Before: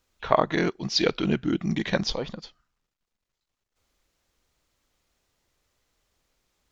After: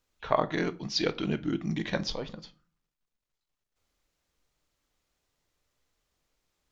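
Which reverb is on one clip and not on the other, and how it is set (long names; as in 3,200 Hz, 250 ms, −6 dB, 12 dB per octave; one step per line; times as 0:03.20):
rectangular room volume 210 cubic metres, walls furnished, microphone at 0.41 metres
level −5.5 dB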